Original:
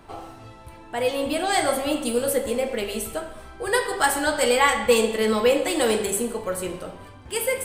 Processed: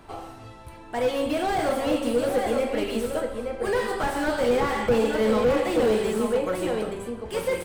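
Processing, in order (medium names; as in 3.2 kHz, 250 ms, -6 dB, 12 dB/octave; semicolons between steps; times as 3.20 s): echo from a far wall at 150 m, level -6 dB; slew-rate limiter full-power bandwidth 69 Hz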